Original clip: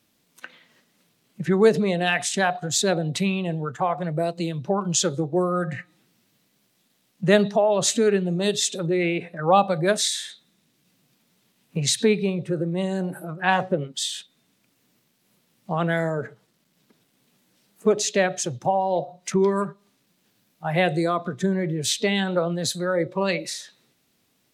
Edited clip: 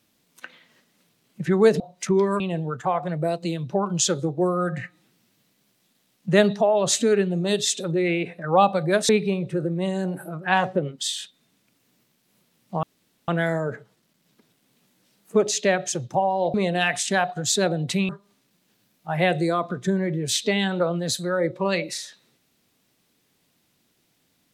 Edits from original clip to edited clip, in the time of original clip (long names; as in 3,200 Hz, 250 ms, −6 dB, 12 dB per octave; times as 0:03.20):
0:01.80–0:03.35: swap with 0:19.05–0:19.65
0:10.04–0:12.05: remove
0:15.79: splice in room tone 0.45 s